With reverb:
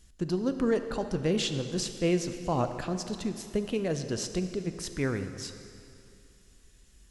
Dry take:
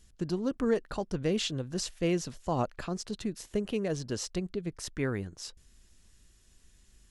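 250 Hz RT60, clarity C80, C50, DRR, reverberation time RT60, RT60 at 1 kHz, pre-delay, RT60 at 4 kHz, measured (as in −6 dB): 2.5 s, 10.0 dB, 9.0 dB, 8.0 dB, 2.6 s, 2.7 s, 4 ms, 2.2 s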